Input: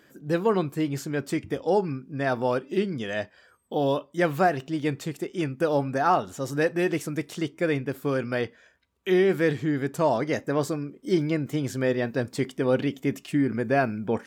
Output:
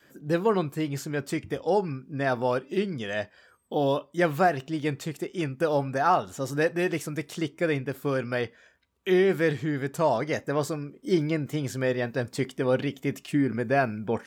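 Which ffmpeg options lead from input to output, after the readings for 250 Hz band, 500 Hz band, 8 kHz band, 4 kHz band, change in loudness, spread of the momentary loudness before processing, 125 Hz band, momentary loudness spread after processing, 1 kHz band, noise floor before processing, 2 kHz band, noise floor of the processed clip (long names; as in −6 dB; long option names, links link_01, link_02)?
−2.0 dB, −1.0 dB, 0.0 dB, 0.0 dB, −1.0 dB, 8 LU, −0.5 dB, 8 LU, −0.5 dB, −60 dBFS, 0.0 dB, −61 dBFS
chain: -af "adynamicequalizer=threshold=0.0141:dfrequency=280:dqfactor=1.3:tfrequency=280:tqfactor=1.3:attack=5:release=100:ratio=0.375:range=2.5:mode=cutabove:tftype=bell"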